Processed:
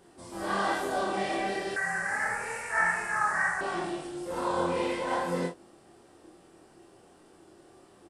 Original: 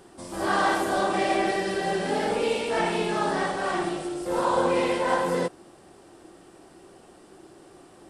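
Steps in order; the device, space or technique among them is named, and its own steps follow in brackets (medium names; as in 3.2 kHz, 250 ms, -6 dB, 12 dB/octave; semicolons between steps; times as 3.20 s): double-tracked vocal (doubling 35 ms -6 dB; chorus 1.1 Hz, depth 4.1 ms); 1.76–3.61 s: FFT filter 120 Hz 0 dB, 310 Hz -20 dB, 1.8 kHz +15 dB, 3.3 kHz -20 dB, 6.7 kHz +6 dB; trim -3.5 dB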